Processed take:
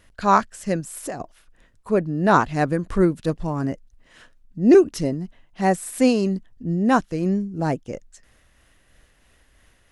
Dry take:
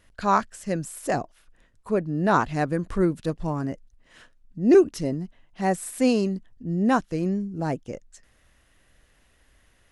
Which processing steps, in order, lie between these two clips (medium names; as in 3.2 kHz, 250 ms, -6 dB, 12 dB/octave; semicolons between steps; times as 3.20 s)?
0.80–1.20 s: compression 4:1, threshold -32 dBFS, peak gain reduction 10.5 dB; tremolo 3 Hz, depth 31%; trim +4.5 dB